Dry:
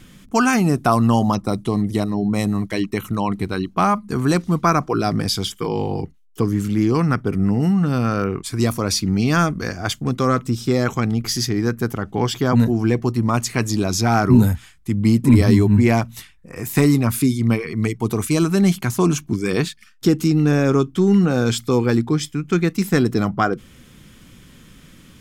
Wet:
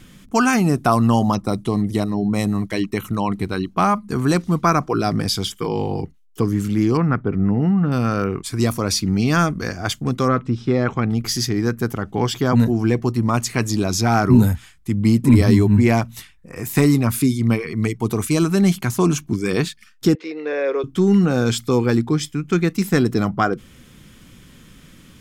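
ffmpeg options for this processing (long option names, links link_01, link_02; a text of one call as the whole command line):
ffmpeg -i in.wav -filter_complex "[0:a]asettb=1/sr,asplit=3[link_01][link_02][link_03];[link_01]atrim=end=6.974[link_04];[link_02]atrim=start=6.97:end=7.92,asetpts=PTS-STARTPTS,afade=type=in:duration=0.004:curve=qsin,afade=type=out:start_time=0.946:duration=0.004:curve=qsin,lowpass=2100[link_05];[link_03]atrim=start=7.916[link_06];[link_04][link_05]acrossfade=duration=0.004:curve1=hsin:curve2=qsin[link_07];[link_07][link_06]acrossfade=duration=0.004:curve1=qsin:curve2=hsin,asettb=1/sr,asplit=3[link_08][link_09][link_10];[link_08]atrim=end=10.284[link_11];[link_09]atrim=start=10.28:end=11.11,asetpts=PTS-STARTPTS,afade=type=in:duration=0.004:curve=qsin,afade=type=out:start_time=0.826:duration=0.004:curve=qsin,lowpass=2800[link_12];[link_10]atrim=start=11.106[link_13];[link_11][link_12]acrossfade=duration=0.004:curve1=hsin:curve2=qsin[link_14];[link_14][link_13]acrossfade=duration=0.004:curve1=qsin:curve2=hsin,asettb=1/sr,asplit=3[link_15][link_16][link_17];[link_15]atrim=end=20.154[link_18];[link_16]atrim=start=20.15:end=20.84,asetpts=PTS-STARTPTS,afade=type=in:duration=0.004:curve=qsin,afade=type=out:start_time=0.686:duration=0.004:curve=qsin,highpass=frequency=450:width=0.5412,highpass=frequency=450:width=1.3066,equalizer=frequency=500:width_type=q:width=4:gain=8,equalizer=frequency=800:width_type=q:width=4:gain=-9,equalizer=frequency=1300:width_type=q:width=4:gain=-9,equalizer=frequency=2000:width_type=q:width=4:gain=5,equalizer=frequency=3000:width_type=q:width=4:gain=-6,lowpass=frequency=3600:width=0.5412,lowpass=frequency=3600:width=1.3066[link_19];[link_17]atrim=start=20.836[link_20];[link_18][link_19]acrossfade=duration=0.004:curve1=hsin:curve2=qsin[link_21];[link_21][link_20]acrossfade=duration=0.004:curve1=qsin:curve2=hsin" out.wav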